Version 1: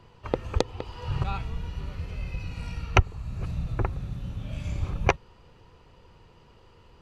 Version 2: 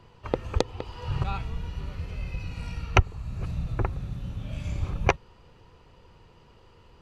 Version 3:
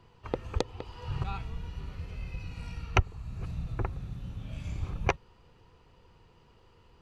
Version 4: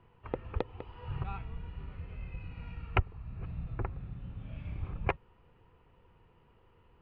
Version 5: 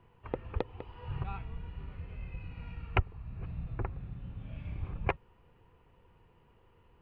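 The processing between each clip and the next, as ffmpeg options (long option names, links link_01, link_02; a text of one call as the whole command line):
ffmpeg -i in.wav -af anull out.wav
ffmpeg -i in.wav -af "bandreject=frequency=580:width=13,volume=-5dB" out.wav
ffmpeg -i in.wav -af "lowpass=frequency=2800:width=0.5412,lowpass=frequency=2800:width=1.3066,volume=-3.5dB" out.wav
ffmpeg -i in.wav -af "bandreject=frequency=1300:width=21" out.wav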